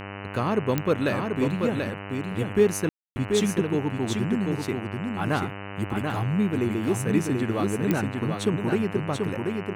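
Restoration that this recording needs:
click removal
hum removal 99.4 Hz, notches 30
ambience match 0:02.89–0:03.16
echo removal 736 ms −4.5 dB

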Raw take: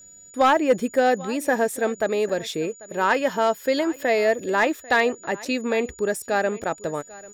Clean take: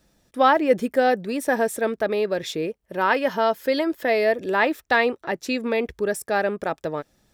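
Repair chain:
clipped peaks rebuilt −10.5 dBFS
notch filter 6,900 Hz, Q 30
repair the gap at 0:02.29/0:03.96/0:05.45/0:06.63, 4.7 ms
echo removal 793 ms −20.5 dB

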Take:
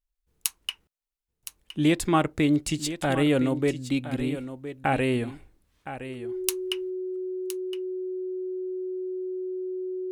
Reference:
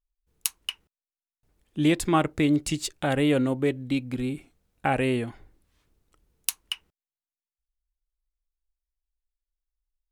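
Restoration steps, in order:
notch filter 370 Hz, Q 30
echo removal 1,015 ms −12 dB

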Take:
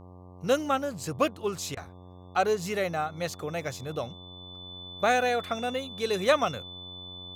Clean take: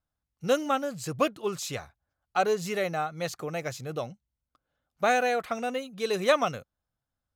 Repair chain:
hum removal 90.6 Hz, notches 13
notch filter 3,500 Hz, Q 30
repair the gap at 0:01.75, 18 ms

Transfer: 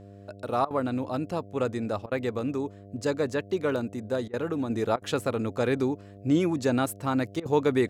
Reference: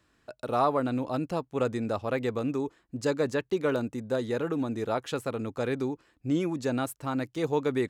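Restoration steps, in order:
hum removal 99.7 Hz, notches 7
repair the gap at 0:00.65/0:02.06/0:04.28/0:04.96/0:07.40, 54 ms
level correction −4 dB, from 0:04.70

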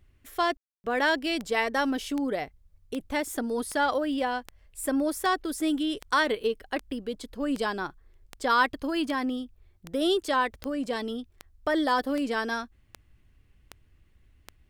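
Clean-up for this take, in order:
click removal
ambience match 0:00.57–0:00.84

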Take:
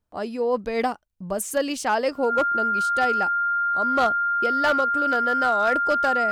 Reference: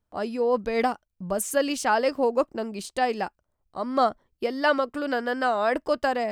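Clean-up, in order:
clipped peaks rebuilt −14 dBFS
notch filter 1,400 Hz, Q 30

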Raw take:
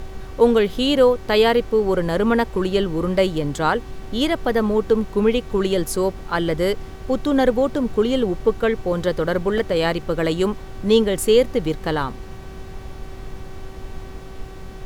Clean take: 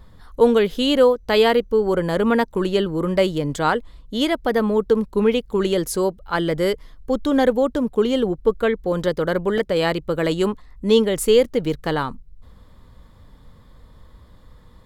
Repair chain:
hum removal 381.6 Hz, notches 19
noise reduction from a noise print 11 dB

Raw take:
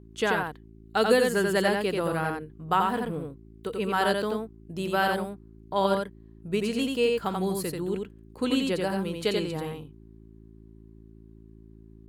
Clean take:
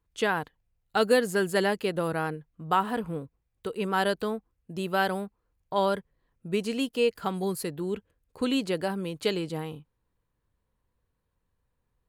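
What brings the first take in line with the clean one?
hum removal 54.8 Hz, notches 7
echo removal 87 ms −3.5 dB

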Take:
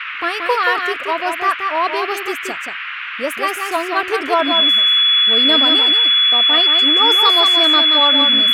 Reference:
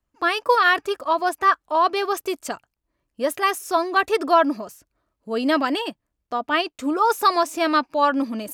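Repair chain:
notch filter 3,400 Hz, Q 30
noise reduction from a noise print 30 dB
echo removal 178 ms −5.5 dB

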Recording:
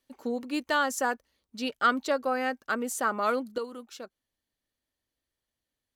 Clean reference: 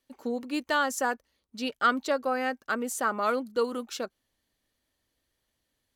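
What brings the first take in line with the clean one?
level 0 dB, from 0:03.58 +8.5 dB

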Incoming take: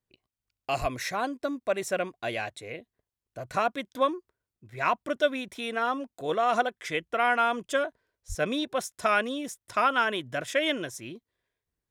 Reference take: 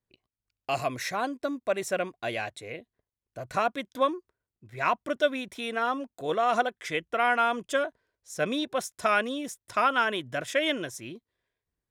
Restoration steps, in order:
0:00.80–0:00.92: high-pass filter 140 Hz 24 dB per octave
0:08.28–0:08.40: high-pass filter 140 Hz 24 dB per octave

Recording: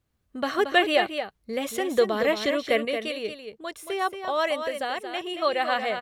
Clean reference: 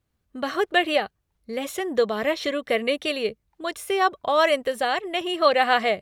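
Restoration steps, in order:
echo removal 227 ms −8 dB
level correction +6 dB, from 0:02.85

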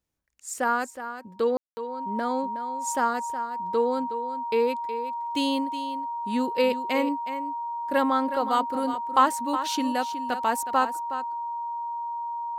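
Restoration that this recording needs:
notch filter 940 Hz, Q 30
ambience match 0:01.57–0:01.77
echo removal 367 ms −11 dB

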